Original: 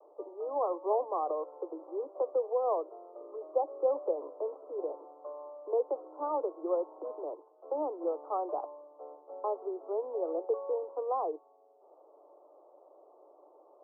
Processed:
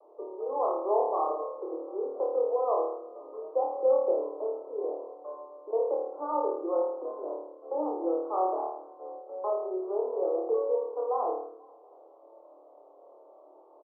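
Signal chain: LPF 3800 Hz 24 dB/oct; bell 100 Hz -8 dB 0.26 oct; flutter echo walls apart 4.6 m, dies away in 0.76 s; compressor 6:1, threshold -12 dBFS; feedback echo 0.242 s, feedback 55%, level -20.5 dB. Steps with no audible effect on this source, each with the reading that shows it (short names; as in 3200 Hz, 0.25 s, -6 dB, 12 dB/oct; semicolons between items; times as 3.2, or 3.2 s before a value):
LPF 3800 Hz: input band ends at 1300 Hz; bell 100 Hz: input band starts at 270 Hz; compressor, threshold -12 dBFS: input peak -14.0 dBFS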